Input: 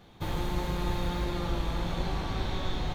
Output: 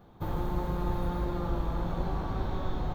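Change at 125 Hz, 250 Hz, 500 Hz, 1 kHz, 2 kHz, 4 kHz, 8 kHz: 0.0 dB, 0.0 dB, 0.0 dB, 0.0 dB, -6.5 dB, -12.0 dB, under -10 dB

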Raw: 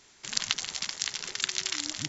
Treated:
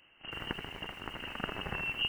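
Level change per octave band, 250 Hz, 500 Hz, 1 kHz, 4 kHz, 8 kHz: +1.5 dB, +6.0 dB, +2.5 dB, -7.0 dB, n/a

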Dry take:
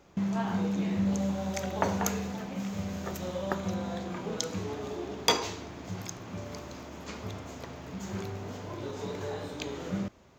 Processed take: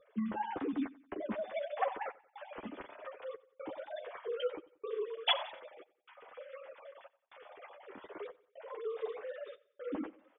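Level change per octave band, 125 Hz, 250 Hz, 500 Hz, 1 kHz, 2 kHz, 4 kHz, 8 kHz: under -20 dB, -10.5 dB, -3.5 dB, -4.5 dB, -5.0 dB, -3.5 dB, under -40 dB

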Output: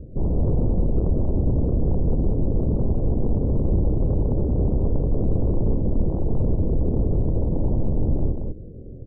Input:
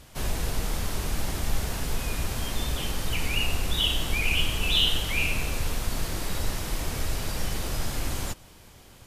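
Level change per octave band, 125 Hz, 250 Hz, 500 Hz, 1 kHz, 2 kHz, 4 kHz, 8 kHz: +11.0 dB, +12.0 dB, +10.0 dB, -4.5 dB, under -40 dB, under -40 dB, under -40 dB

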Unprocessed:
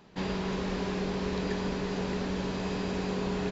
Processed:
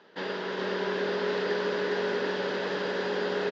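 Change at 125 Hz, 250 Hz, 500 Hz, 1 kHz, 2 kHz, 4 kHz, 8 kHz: -9.0 dB, -5.0 dB, +6.0 dB, +3.0 dB, +7.5 dB, +4.0 dB, n/a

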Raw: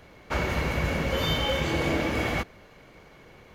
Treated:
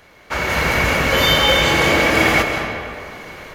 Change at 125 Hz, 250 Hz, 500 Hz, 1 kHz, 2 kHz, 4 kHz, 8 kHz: +6.0, +8.0, +10.5, +13.0, +15.0, +14.0, +15.5 dB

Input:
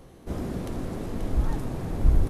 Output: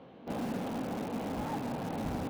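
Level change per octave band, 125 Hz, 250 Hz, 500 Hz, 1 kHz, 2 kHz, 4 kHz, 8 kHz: -12.5 dB, -2.0 dB, -2.0 dB, +3.0 dB, +0.5 dB, +0.5 dB, n/a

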